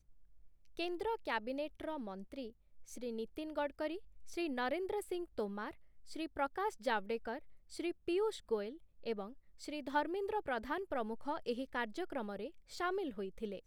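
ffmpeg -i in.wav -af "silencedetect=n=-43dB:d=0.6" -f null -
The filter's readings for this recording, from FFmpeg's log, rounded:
silence_start: 0.00
silence_end: 0.77 | silence_duration: 0.77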